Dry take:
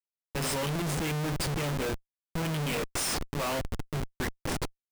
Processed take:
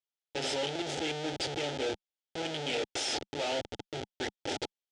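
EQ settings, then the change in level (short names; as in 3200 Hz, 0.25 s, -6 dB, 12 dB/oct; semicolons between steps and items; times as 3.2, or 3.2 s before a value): speaker cabinet 150–6700 Hz, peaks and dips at 200 Hz +4 dB, 850 Hz +10 dB, 1300 Hz +6 dB, 3300 Hz +7 dB; fixed phaser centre 450 Hz, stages 4; 0.0 dB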